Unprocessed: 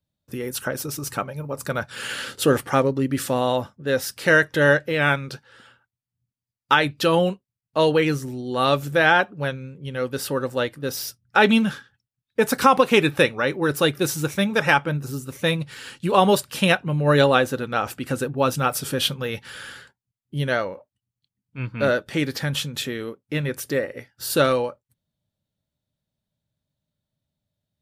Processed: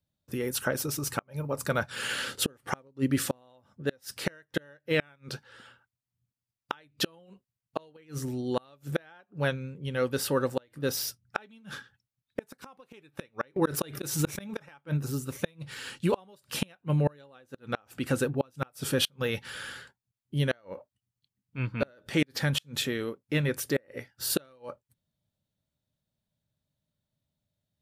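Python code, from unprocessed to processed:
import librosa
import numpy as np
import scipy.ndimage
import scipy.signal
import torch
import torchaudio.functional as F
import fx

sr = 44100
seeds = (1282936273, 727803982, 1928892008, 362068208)

y = fx.gate_flip(x, sr, shuts_db=-12.0, range_db=-35)
y = fx.pre_swell(y, sr, db_per_s=73.0, at=(13.56, 14.81))
y = y * 10.0 ** (-2.0 / 20.0)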